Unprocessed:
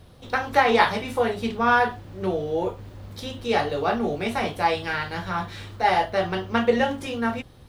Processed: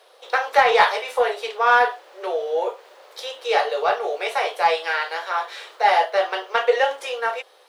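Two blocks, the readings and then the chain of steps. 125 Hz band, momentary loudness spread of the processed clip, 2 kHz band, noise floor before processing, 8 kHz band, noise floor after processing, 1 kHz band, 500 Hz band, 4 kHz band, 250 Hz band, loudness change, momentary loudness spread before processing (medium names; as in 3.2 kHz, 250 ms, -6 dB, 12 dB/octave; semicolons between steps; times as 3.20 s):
under -25 dB, 10 LU, +3.5 dB, -48 dBFS, +3.0 dB, -53 dBFS, +3.5 dB, +3.0 dB, +3.5 dB, under -15 dB, +3.0 dB, 11 LU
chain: steep high-pass 440 Hz 48 dB/octave; treble shelf 11 kHz -7 dB; in parallel at -5.5 dB: saturation -17.5 dBFS, distortion -11 dB; on the sum: trim +1 dB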